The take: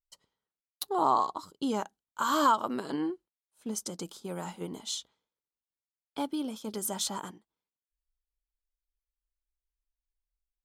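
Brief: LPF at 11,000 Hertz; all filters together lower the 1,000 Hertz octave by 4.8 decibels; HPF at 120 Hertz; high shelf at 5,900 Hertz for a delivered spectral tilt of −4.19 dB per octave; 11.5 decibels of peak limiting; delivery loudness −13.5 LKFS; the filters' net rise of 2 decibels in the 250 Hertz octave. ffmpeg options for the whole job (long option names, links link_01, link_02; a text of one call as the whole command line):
ffmpeg -i in.wav -af "highpass=120,lowpass=11000,equalizer=frequency=250:width_type=o:gain=3,equalizer=frequency=1000:width_type=o:gain=-6,highshelf=frequency=5900:gain=6.5,volume=22.5dB,alimiter=limit=-2dB:level=0:latency=1" out.wav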